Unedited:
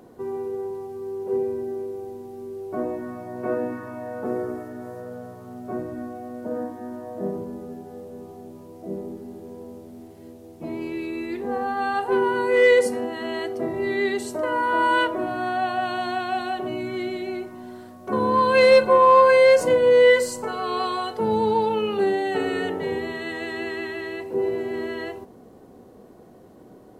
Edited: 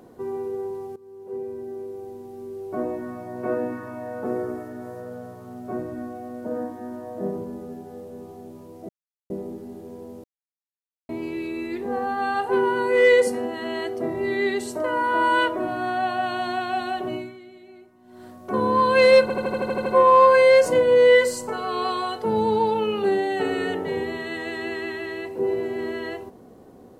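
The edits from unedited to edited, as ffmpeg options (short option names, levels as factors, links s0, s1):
-filter_complex "[0:a]asplit=15[s0][s1][s2][s3][s4][s5][s6][s7][s8][s9][s10][s11][s12][s13][s14];[s0]atrim=end=0.96,asetpts=PTS-STARTPTS,afade=t=out:st=0.956:d=0.004:c=hsin:silence=0.133352[s15];[s1]atrim=start=0.96:end=8.89,asetpts=PTS-STARTPTS,afade=t=in:d=2.05:c=qsin:silence=0.133352,afade=t=out:st=7.926:d=0.004:c=hsin,apad=pad_dur=0.41[s16];[s2]atrim=start=8.89:end=9.83,asetpts=PTS-STARTPTS,afade=t=in:d=0.004:c=hsin,afade=t=out:st=0.936:d=0.004:c=hsin[s17];[s3]atrim=start=9.83:end=10.68,asetpts=PTS-STARTPTS,volume=0[s18];[s4]atrim=start=10.68:end=17.02,asetpts=PTS-STARTPTS,afade=t=in:d=0.004:c=hsin,afade=t=out:st=6.06:d=0.28:c=qua:silence=0.141254[s19];[s5]atrim=start=17.02:end=17.57,asetpts=PTS-STARTPTS,volume=0.141[s20];[s6]atrim=start=17.57:end=18.892,asetpts=PTS-STARTPTS,afade=t=in:d=0.28:c=qua:silence=0.141254[s21];[s7]atrim=start=18.808:end=18.892[s22];[s8]atrim=start=18.808:end=18.892[s23];[s9]atrim=start=18.808:end=18.892[s24];[s10]atrim=start=18.808:end=18.892[s25];[s11]atrim=start=18.808:end=18.892[s26];[s12]atrim=start=18.808:end=18.892[s27];[s13]atrim=start=18.808:end=18.892[s28];[s14]atrim=start=18.808[s29];[s15][s16][s17][s18][s19][s20][s21]concat=n=7:v=0:a=1[s30];[s30][s22]acrossfade=d=0.004:c1=hsin:c2=hsin[s31];[s31][s23]acrossfade=d=0.004:c1=hsin:c2=hsin[s32];[s32][s24]acrossfade=d=0.004:c1=hsin:c2=hsin[s33];[s33][s25]acrossfade=d=0.004:c1=hsin:c2=hsin[s34];[s34][s26]acrossfade=d=0.004:c1=hsin:c2=hsin[s35];[s35][s27]acrossfade=d=0.004:c1=hsin:c2=hsin[s36];[s36][s28]acrossfade=d=0.004:c1=hsin:c2=hsin[s37];[s37][s29]acrossfade=d=0.004:c1=hsin:c2=hsin"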